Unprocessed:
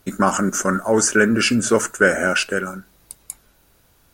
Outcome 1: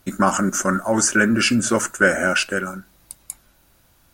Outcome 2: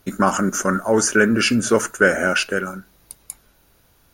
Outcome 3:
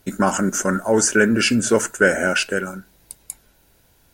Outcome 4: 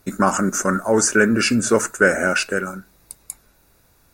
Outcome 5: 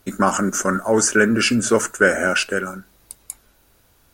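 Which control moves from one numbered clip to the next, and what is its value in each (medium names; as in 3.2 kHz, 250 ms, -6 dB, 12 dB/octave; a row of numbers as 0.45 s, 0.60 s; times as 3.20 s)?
band-stop, frequency: 440 Hz, 7.9 kHz, 1.2 kHz, 3.1 kHz, 160 Hz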